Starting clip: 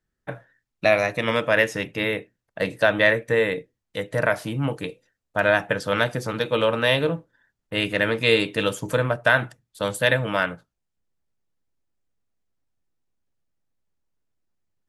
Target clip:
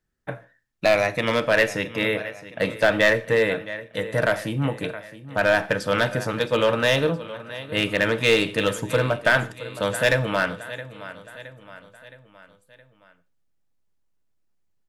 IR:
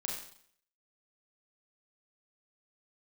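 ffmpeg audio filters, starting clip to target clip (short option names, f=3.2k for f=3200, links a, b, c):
-filter_complex "[0:a]aecho=1:1:668|1336|2004|2672:0.158|0.0792|0.0396|0.0198,aeval=exprs='clip(val(0),-1,0.211)':c=same,asplit=2[a][b];[1:a]atrim=start_sample=2205,afade=t=out:st=0.21:d=0.01,atrim=end_sample=9702[c];[b][c]afir=irnorm=-1:irlink=0,volume=-15.5dB[d];[a][d]amix=inputs=2:normalize=0"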